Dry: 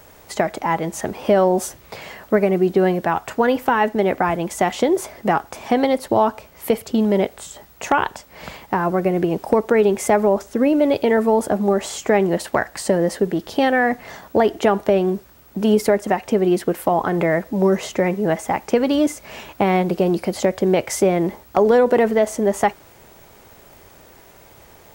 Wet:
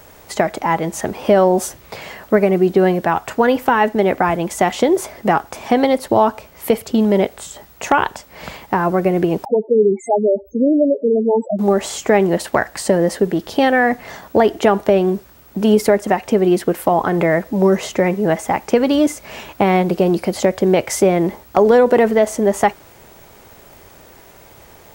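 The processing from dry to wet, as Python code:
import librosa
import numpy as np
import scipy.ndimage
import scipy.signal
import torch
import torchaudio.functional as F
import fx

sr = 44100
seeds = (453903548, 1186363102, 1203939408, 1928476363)

y = fx.spec_topn(x, sr, count=4, at=(9.45, 11.59))
y = y * librosa.db_to_amplitude(3.0)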